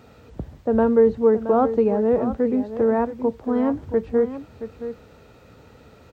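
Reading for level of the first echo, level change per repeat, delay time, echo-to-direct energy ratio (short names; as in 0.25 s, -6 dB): -11.5 dB, no steady repeat, 0.673 s, -11.5 dB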